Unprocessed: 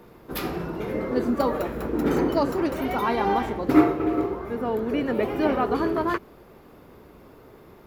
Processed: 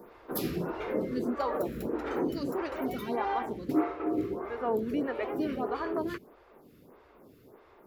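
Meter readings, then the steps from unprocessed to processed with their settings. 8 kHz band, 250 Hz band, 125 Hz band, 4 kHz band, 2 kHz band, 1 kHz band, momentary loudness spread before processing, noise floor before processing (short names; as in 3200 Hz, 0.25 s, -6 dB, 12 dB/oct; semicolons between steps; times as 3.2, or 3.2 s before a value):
n/a, -8.0 dB, -8.5 dB, -8.0 dB, -8.5 dB, -8.0 dB, 9 LU, -50 dBFS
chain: low shelf 63 Hz -7.5 dB; in parallel at -3 dB: limiter -16.5 dBFS, peak gain reduction 11 dB; on the sum: vocal rider within 4 dB 0.5 s; photocell phaser 1.6 Hz; gain -8 dB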